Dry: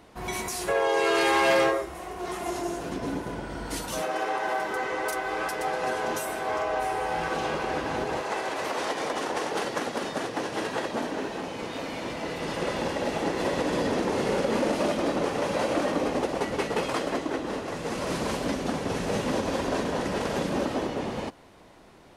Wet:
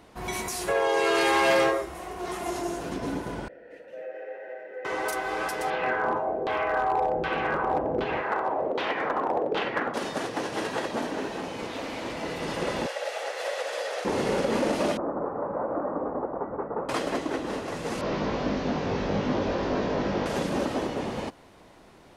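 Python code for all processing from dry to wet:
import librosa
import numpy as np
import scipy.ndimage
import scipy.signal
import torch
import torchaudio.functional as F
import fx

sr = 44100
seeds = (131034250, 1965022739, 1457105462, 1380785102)

y = fx.chain(x, sr, fx.vowel_filter(vowel='e'),
    fx.band_shelf(hz=5700.0, db=-11.5, octaves=2.3), at=(3.48, 4.85))
y = fx.chain(y, sr, fx.peak_eq(hz=13000.0, db=-7.0, octaves=1.7),
    fx.filter_lfo_lowpass(shape='saw_down', hz=1.3, low_hz=430.0, high_hz=3600.0, q=2.3),
    fx.overload_stage(gain_db=18.5), at=(5.7, 9.94))
y = fx.chain(y, sr, fx.peak_eq(hz=160.0, db=-7.0, octaves=0.43),
    fx.doppler_dist(depth_ms=0.16), at=(11.67, 12.16))
y = fx.chain(y, sr, fx.ellip_highpass(hz=520.0, order=4, stop_db=70),
    fx.peak_eq(hz=980.0, db=-9.5, octaves=0.33), at=(12.86, 14.05))
y = fx.chain(y, sr, fx.steep_lowpass(hz=1300.0, slope=36),
    fx.low_shelf(hz=410.0, db=-7.5), at=(14.97, 16.89))
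y = fx.chain(y, sr, fx.delta_mod(bps=32000, step_db=-44.5),
    fx.doubler(ms=20.0, db=-2.5), at=(18.01, 20.26))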